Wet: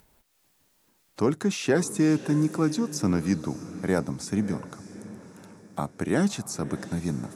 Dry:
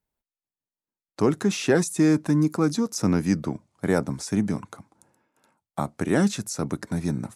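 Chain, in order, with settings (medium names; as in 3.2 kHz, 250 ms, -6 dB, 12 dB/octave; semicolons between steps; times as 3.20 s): upward compressor, threshold -40 dBFS; echo that smears into a reverb 599 ms, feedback 47%, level -15 dB; trim -2.5 dB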